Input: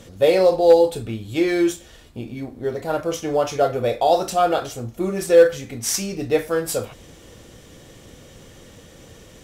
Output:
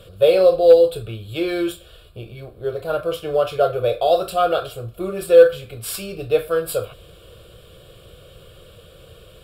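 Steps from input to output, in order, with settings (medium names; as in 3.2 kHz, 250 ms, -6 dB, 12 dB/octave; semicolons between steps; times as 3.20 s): static phaser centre 1.3 kHz, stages 8; trim +2.5 dB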